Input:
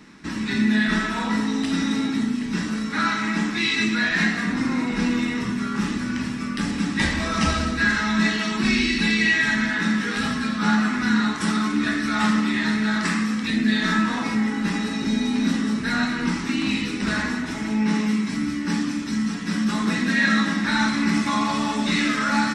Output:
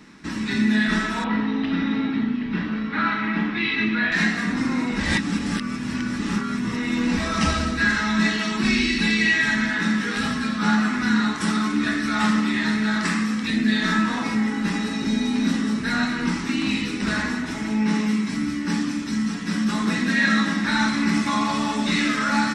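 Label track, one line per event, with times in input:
1.240000	4.120000	low-pass 3.4 kHz 24 dB/octave
5.000000	7.170000	reverse

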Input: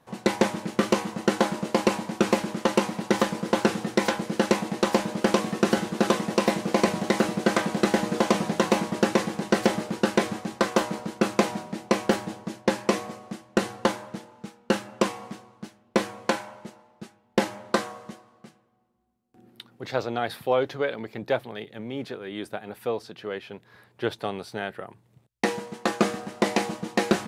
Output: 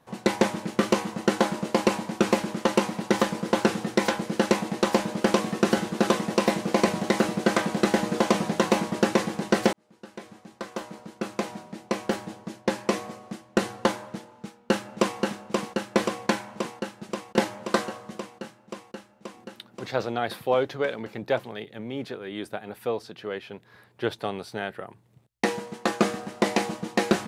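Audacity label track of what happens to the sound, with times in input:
9.730000	13.630000	fade in linear
14.320000	15.200000	echo throw 530 ms, feedback 80%, level -3.5 dB

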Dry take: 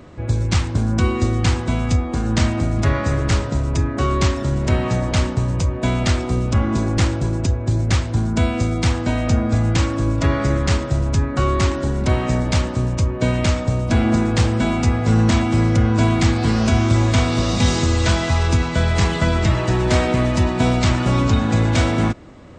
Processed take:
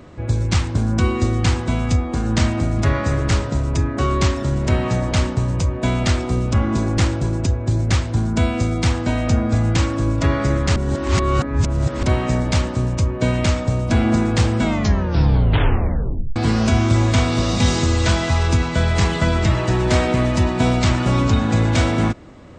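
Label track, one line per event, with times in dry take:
10.760000	12.030000	reverse
14.610000	14.610000	tape stop 1.75 s

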